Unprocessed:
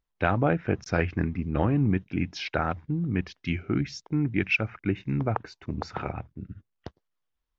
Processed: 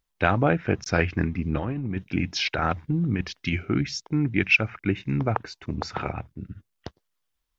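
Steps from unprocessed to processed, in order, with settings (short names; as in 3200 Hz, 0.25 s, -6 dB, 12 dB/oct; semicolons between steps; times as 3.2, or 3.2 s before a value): high shelf 2400 Hz +7 dB; 1.45–3.65 negative-ratio compressor -26 dBFS, ratio -0.5; gain +2 dB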